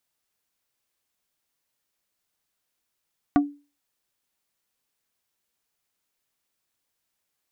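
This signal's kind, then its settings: wood hit plate, lowest mode 288 Hz, decay 0.32 s, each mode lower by 5 dB, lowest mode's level -12 dB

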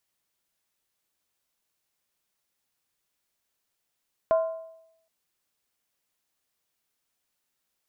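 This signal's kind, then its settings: skin hit length 0.77 s, lowest mode 651 Hz, decay 0.81 s, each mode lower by 11 dB, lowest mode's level -16.5 dB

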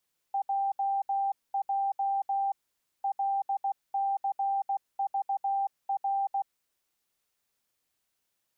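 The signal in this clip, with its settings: Morse "JJ LCVR" 16 wpm 789 Hz -25.5 dBFS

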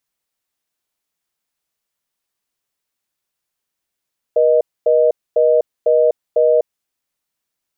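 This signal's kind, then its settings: call progress tone reorder tone, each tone -12.5 dBFS 2.33 s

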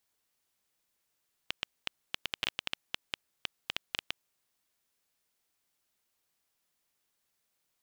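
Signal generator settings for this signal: random clicks 7.7 per s -13 dBFS 2.67 s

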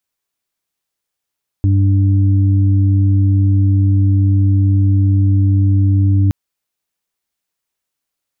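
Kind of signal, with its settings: steady additive tone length 4.67 s, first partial 97.7 Hz, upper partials -17.5/-11 dB, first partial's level -9 dB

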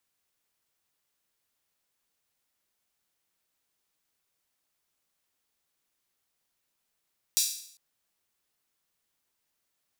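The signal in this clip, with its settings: open hi-hat length 0.40 s, high-pass 4.8 kHz, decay 0.62 s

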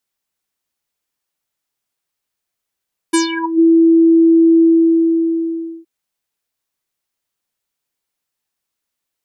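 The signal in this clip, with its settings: synth note square E4 24 dB/octave, low-pass 350 Hz, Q 7.3, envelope 5 oct, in 0.45 s, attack 13 ms, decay 0.13 s, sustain -11.5 dB, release 1.23 s, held 1.49 s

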